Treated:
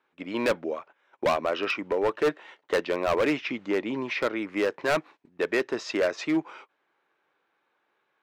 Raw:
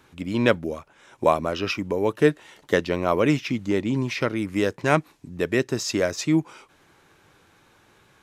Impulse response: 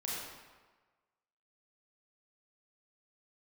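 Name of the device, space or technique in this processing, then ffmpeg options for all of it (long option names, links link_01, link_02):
walkie-talkie: -af "highpass=430,lowpass=2700,asoftclip=type=hard:threshold=-21.5dB,agate=range=-16dB:threshold=-49dB:ratio=16:detection=peak,volume=2.5dB"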